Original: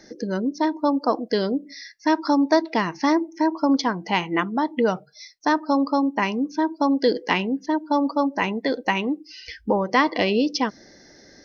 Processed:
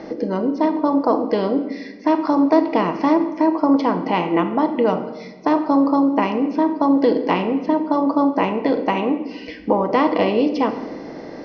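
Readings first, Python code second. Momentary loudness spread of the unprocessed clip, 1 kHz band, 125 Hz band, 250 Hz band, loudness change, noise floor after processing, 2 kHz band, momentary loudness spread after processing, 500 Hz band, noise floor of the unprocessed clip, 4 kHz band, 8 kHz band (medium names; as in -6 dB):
7 LU, +3.0 dB, +3.0 dB, +4.5 dB, +4.0 dB, -36 dBFS, -3.5 dB, 8 LU, +5.0 dB, -51 dBFS, -4.5 dB, no reading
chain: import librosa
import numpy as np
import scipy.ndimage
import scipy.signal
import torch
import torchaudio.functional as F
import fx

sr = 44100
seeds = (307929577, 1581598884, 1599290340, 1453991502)

y = fx.bin_compress(x, sr, power=0.6)
y = scipy.signal.sosfilt(scipy.signal.butter(2, 2300.0, 'lowpass', fs=sr, output='sos'), y)
y = fx.peak_eq(y, sr, hz=1700.0, db=-11.0, octaves=0.43)
y = fx.room_shoebox(y, sr, seeds[0], volume_m3=790.0, walls='mixed', distance_m=0.64)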